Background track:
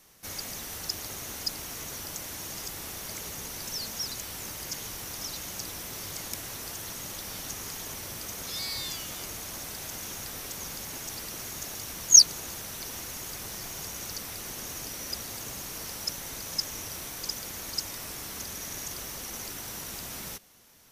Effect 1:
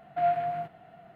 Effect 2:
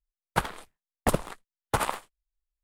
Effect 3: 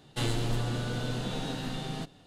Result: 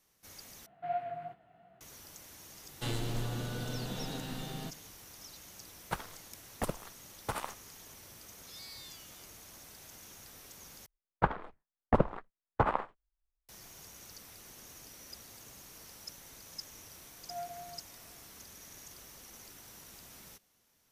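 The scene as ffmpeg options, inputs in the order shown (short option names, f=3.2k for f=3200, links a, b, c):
-filter_complex "[1:a]asplit=2[a][b];[2:a]asplit=2[c][d];[0:a]volume=-14dB[e];[a]flanger=delay=15:depth=3.2:speed=2.8[f];[d]lowpass=1.4k[g];[e]asplit=3[h][i][j];[h]atrim=end=0.664[k];[f]atrim=end=1.15,asetpts=PTS-STARTPTS,volume=-7dB[l];[i]atrim=start=1.806:end=10.864[m];[g]atrim=end=2.63,asetpts=PTS-STARTPTS,volume=-0.5dB[n];[j]atrim=start=13.486[o];[3:a]atrim=end=2.26,asetpts=PTS-STARTPTS,volume=-5.5dB,afade=t=in:d=0.004:c=hsin,afade=t=out:st=2.256:d=0.004:c=hsin,adelay=2650[p];[c]atrim=end=2.63,asetpts=PTS-STARTPTS,volume=-10.5dB,afade=t=in:d=0.004:c=hsin,afade=t=out:st=2.626:d=0.004:c=hsin,adelay=5550[q];[b]atrim=end=1.15,asetpts=PTS-STARTPTS,volume=-16.5dB,afade=t=in:d=0.004:c=hsin,afade=t=out:st=1.146:d=0.004:c=hsin,adelay=17130[r];[k][l]acrossfade=d=0.004:c1=hsin:c2=hsin[s];[s][m]acrossfade=d=0.004:c1=hsin:c2=hsin[t];[t][n]acrossfade=d=0.004:c1=hsin:c2=hsin[u];[u][o]acrossfade=d=0.004:c1=hsin:c2=hsin[v];[v][p][q][r]amix=inputs=4:normalize=0"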